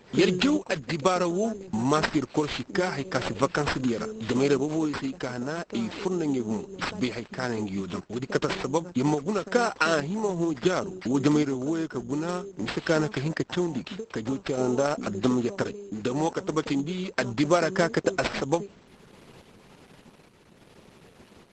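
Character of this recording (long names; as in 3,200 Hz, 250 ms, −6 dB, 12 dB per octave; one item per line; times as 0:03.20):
sample-and-hold tremolo
aliases and images of a low sample rate 6,800 Hz, jitter 0%
Opus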